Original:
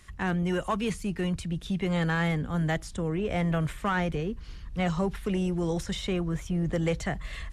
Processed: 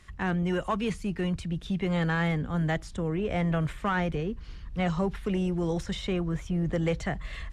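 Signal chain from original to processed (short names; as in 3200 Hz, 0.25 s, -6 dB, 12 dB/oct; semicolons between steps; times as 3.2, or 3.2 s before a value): high shelf 8200 Hz -11.5 dB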